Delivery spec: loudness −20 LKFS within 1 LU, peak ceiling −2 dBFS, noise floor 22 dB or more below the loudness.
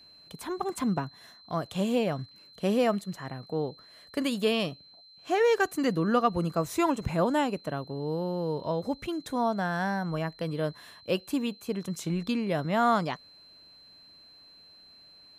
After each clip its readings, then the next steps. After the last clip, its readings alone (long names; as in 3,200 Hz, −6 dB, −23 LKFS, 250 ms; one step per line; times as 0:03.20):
interfering tone 4,100 Hz; level of the tone −52 dBFS; integrated loudness −29.5 LKFS; sample peak −12.0 dBFS; target loudness −20.0 LKFS
→ notch filter 4,100 Hz, Q 30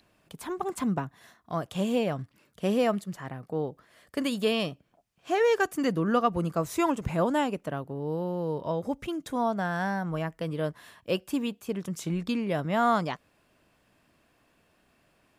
interfering tone none found; integrated loudness −29.5 LKFS; sample peak −12.5 dBFS; target loudness −20.0 LKFS
→ level +9.5 dB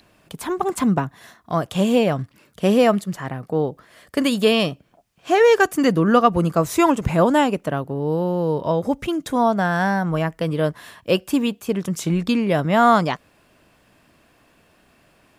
integrated loudness −20.0 LKFS; sample peak −3.0 dBFS; background noise floor −58 dBFS